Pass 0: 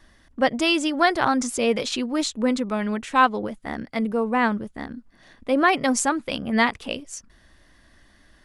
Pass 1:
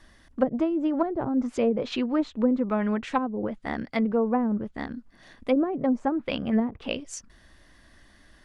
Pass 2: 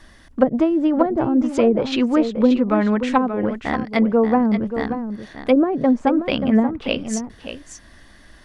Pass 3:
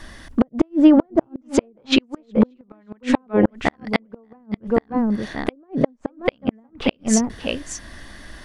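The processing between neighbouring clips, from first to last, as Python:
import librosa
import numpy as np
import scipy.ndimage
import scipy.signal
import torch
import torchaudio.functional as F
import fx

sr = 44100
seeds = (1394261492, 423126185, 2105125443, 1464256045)

y1 = fx.env_lowpass_down(x, sr, base_hz=330.0, full_db=-16.0)
y2 = y1 + 10.0 ** (-9.5 / 20.0) * np.pad(y1, (int(582 * sr / 1000.0), 0))[:len(y1)]
y2 = y2 * librosa.db_to_amplitude(7.5)
y3 = fx.gate_flip(y2, sr, shuts_db=-10.0, range_db=-42)
y3 = y3 * librosa.db_to_amplitude(7.5)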